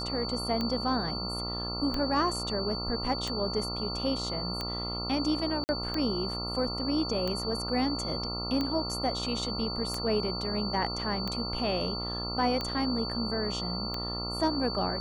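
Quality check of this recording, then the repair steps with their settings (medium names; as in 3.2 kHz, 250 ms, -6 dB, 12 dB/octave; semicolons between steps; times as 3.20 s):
buzz 60 Hz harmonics 23 -37 dBFS
tick 45 rpm -18 dBFS
whine 4.5 kHz -35 dBFS
5.64–5.69 s: dropout 49 ms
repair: de-click; de-hum 60 Hz, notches 23; band-stop 4.5 kHz, Q 30; interpolate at 5.64 s, 49 ms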